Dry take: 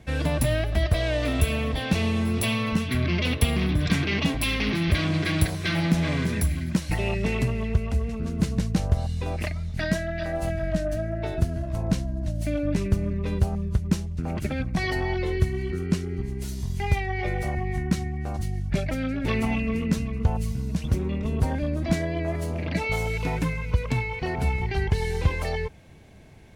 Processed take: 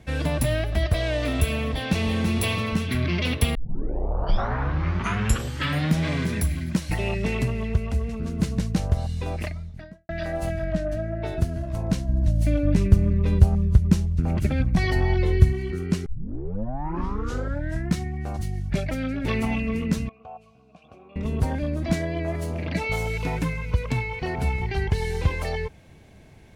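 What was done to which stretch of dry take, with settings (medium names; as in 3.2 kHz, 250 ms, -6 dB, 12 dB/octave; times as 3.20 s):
1.73–2.27 s: echo throw 330 ms, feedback 40%, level -5 dB
3.55 s: tape start 2.52 s
9.29–10.09 s: studio fade out
10.64–11.25 s: treble shelf 5.3 kHz -10 dB
12.08–15.53 s: bass shelf 170 Hz +9.5 dB
16.06 s: tape start 1.94 s
20.09–21.16 s: vowel filter a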